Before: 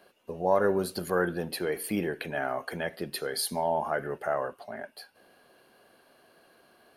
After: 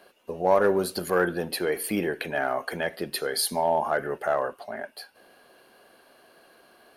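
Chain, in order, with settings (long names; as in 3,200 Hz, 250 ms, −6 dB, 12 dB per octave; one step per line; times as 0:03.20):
in parallel at −3 dB: asymmetric clip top −21.5 dBFS
on the sum: parametric band 120 Hz −5.5 dB 1.8 octaves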